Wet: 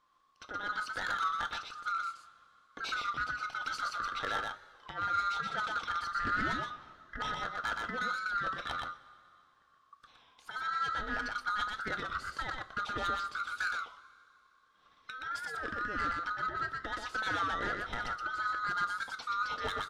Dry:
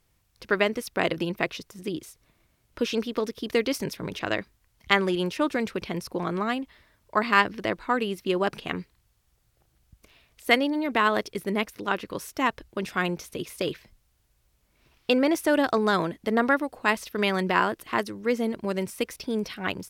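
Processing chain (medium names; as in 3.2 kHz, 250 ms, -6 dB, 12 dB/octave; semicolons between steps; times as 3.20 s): split-band scrambler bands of 1 kHz; low-pass 4.2 kHz 12 dB/octave; peaking EQ 2.4 kHz -3.5 dB 0.77 oct; compressor with a negative ratio -27 dBFS, ratio -0.5; saturation -23 dBFS, distortion -14 dB; delay 122 ms -3.5 dB; two-slope reverb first 0.22 s, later 2.6 s, from -19 dB, DRR 9 dB; warped record 33 1/3 rpm, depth 100 cents; trim -5.5 dB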